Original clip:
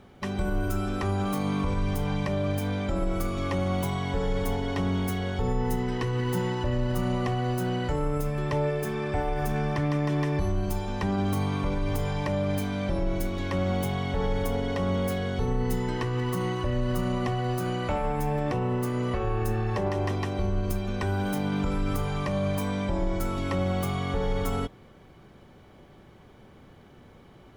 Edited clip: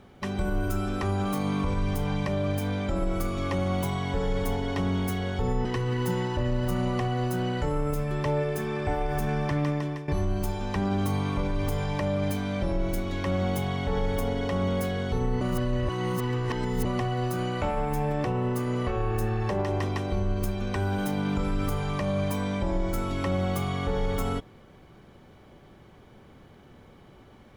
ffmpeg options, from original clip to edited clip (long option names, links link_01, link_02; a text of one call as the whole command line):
ffmpeg -i in.wav -filter_complex "[0:a]asplit=5[link_01][link_02][link_03][link_04][link_05];[link_01]atrim=end=5.652[link_06];[link_02]atrim=start=5.918:end=10.35,asetpts=PTS-STARTPTS,afade=type=out:start_time=4.022:duration=0.41:silence=0.177828[link_07];[link_03]atrim=start=10.35:end=15.682,asetpts=PTS-STARTPTS,afade=type=in:duration=0.004:curve=hsin:silence=0.177828[link_08];[link_04]atrim=start=15.678:end=17.122,asetpts=PTS-STARTPTS,areverse[link_09];[link_05]atrim=start=17.118[link_10];[link_07][link_08]concat=n=2:v=0:a=1[link_11];[link_06][link_11]acrossfade=duration=0.004:curve1=hsin:curve2=hsin[link_12];[link_12][link_09]acrossfade=duration=0.004:curve1=hsin:curve2=hsin[link_13];[link_13][link_10]acrossfade=duration=0.004:curve1=hsin:curve2=hsin" out.wav